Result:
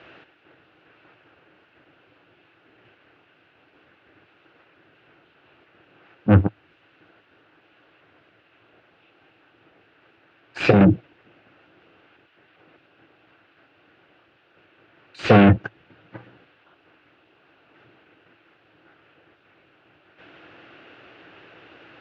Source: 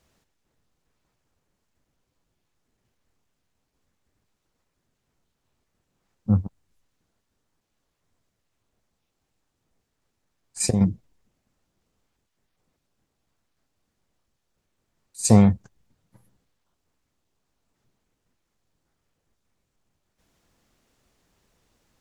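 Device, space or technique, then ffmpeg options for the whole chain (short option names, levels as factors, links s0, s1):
overdrive pedal into a guitar cabinet: -filter_complex "[0:a]asplit=2[s0][s1];[s1]highpass=f=720:p=1,volume=44.7,asoftclip=type=tanh:threshold=0.794[s2];[s0][s2]amix=inputs=2:normalize=0,lowpass=f=1300:p=1,volume=0.501,highpass=77,equalizer=f=110:t=q:w=4:g=5,equalizer=f=220:t=q:w=4:g=-8,equalizer=f=320:t=q:w=4:g=8,equalizer=f=990:t=q:w=4:g=-6,equalizer=f=1500:t=q:w=4:g=7,equalizer=f=2700:t=q:w=4:g=9,lowpass=f=3600:w=0.5412,lowpass=f=3600:w=1.3066"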